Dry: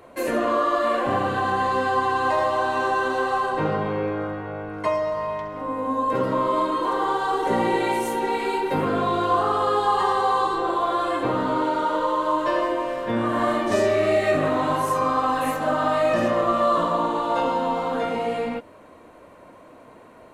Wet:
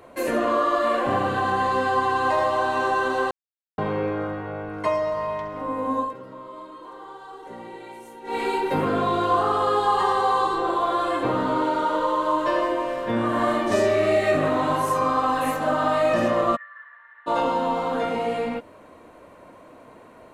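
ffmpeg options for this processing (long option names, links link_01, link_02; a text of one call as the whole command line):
ffmpeg -i in.wav -filter_complex "[0:a]asplit=3[link_01][link_02][link_03];[link_01]afade=type=out:start_time=16.55:duration=0.02[link_04];[link_02]asuperpass=centerf=1800:order=4:qfactor=5.5,afade=type=in:start_time=16.55:duration=0.02,afade=type=out:start_time=17.26:duration=0.02[link_05];[link_03]afade=type=in:start_time=17.26:duration=0.02[link_06];[link_04][link_05][link_06]amix=inputs=3:normalize=0,asplit=5[link_07][link_08][link_09][link_10][link_11];[link_07]atrim=end=3.31,asetpts=PTS-STARTPTS,afade=type=out:start_time=3.306:duration=0.004:curve=hsin[link_12];[link_08]atrim=start=3.31:end=3.78,asetpts=PTS-STARTPTS,volume=0[link_13];[link_09]atrim=start=3.78:end=6.14,asetpts=PTS-STARTPTS,afade=type=in:duration=0.004:curve=hsin,afade=type=out:start_time=2.21:duration=0.15:silence=0.133352[link_14];[link_10]atrim=start=6.14:end=8.24,asetpts=PTS-STARTPTS,volume=-17.5dB[link_15];[link_11]atrim=start=8.24,asetpts=PTS-STARTPTS,afade=type=in:duration=0.15:silence=0.133352[link_16];[link_12][link_13][link_14][link_15][link_16]concat=n=5:v=0:a=1" out.wav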